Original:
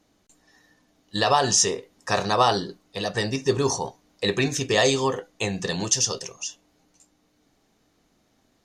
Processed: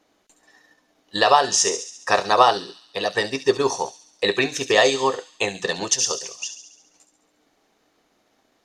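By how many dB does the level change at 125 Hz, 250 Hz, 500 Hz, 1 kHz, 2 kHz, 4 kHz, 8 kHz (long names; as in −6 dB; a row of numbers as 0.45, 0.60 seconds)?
−9.0, −1.5, +3.5, +5.0, +5.0, +2.5, +1.0 decibels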